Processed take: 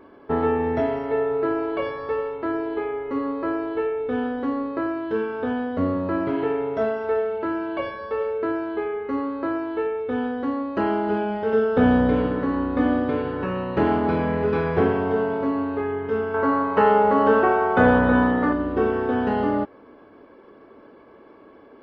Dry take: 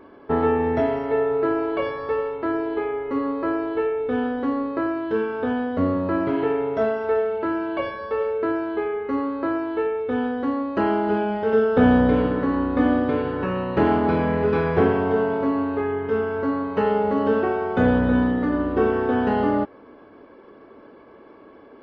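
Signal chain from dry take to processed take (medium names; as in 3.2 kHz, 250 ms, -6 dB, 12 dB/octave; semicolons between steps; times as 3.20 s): 16.34–18.53 s: peaking EQ 1.1 kHz +10 dB 2.2 oct; trim -1.5 dB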